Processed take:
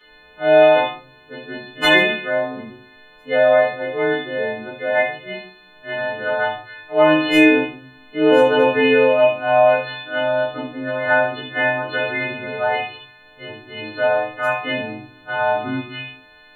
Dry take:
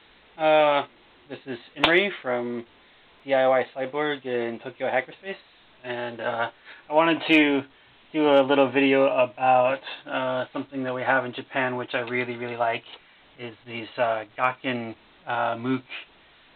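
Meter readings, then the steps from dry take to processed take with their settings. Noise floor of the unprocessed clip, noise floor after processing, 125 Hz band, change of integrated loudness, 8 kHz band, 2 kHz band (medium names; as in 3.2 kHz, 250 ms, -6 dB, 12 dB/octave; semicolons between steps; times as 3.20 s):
-55 dBFS, -48 dBFS, +4.5 dB, +6.0 dB, no reading, +7.5 dB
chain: partials quantised in pitch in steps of 3 st; simulated room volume 47 m³, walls mixed, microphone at 1.8 m; harmonic-percussive split percussive -5 dB; trim -6.5 dB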